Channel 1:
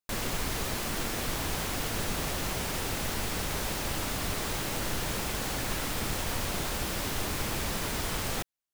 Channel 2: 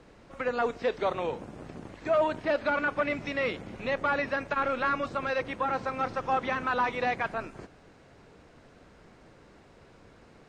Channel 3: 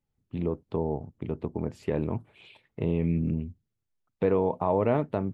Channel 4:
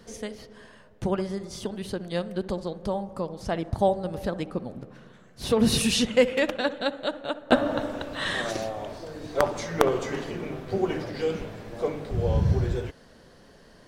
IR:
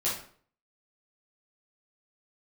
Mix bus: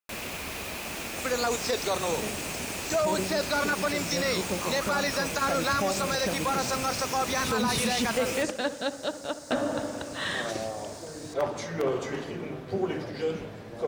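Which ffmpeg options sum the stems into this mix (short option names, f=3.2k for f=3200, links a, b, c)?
-filter_complex "[0:a]equalizer=f=125:t=o:w=0.33:g=-10,equalizer=f=630:t=o:w=0.33:g=4,equalizer=f=2.5k:t=o:w=0.33:g=10,volume=-4dB[a];[1:a]aexciter=amount=11.9:drive=8.2:freq=4.5k,adelay=850,volume=2dB[b];[2:a]highpass=f=1.3k:t=q:w=4.9,volume=-9dB[c];[3:a]asoftclip=type=tanh:threshold=-14dB,adelay=2000,volume=-2dB[d];[a][b][c][d]amix=inputs=4:normalize=0,highpass=66,alimiter=limit=-18dB:level=0:latency=1:release=24"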